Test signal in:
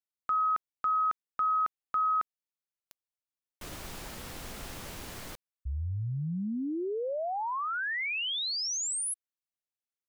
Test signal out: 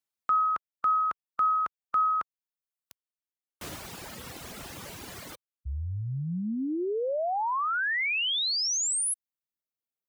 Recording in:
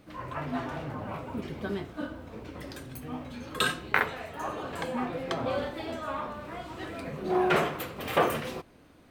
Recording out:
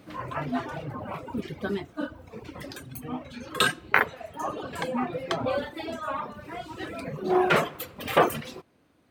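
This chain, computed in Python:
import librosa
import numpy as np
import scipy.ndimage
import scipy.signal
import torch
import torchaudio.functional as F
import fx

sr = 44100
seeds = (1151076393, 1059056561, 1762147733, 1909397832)

y = scipy.signal.sosfilt(scipy.signal.butter(2, 75.0, 'highpass', fs=sr, output='sos'), x)
y = fx.dereverb_blind(y, sr, rt60_s=1.7)
y = y * 10.0 ** (4.5 / 20.0)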